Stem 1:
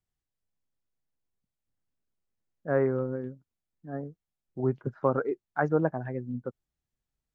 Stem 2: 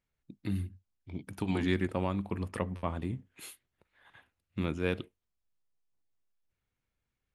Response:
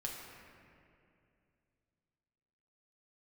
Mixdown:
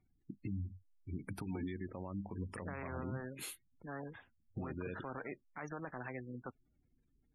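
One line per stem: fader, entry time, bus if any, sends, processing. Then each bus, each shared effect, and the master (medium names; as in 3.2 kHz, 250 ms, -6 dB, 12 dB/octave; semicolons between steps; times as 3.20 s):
-14.0 dB, 0.00 s, no send, peaking EQ 270 Hz +9 dB 0.7 oct; spectrum-flattening compressor 4:1
+2.0 dB, 0.00 s, no send, compression 12:1, threshold -36 dBFS, peak gain reduction 13.5 dB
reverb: none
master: spectral gate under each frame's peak -20 dB strong; peak limiter -32.5 dBFS, peak gain reduction 10 dB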